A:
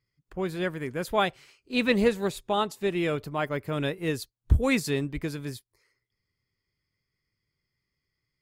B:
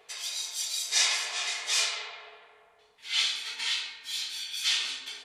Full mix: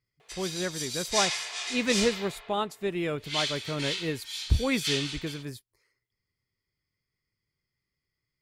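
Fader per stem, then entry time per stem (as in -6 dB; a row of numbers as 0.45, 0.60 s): -3.0, -3.0 dB; 0.00, 0.20 s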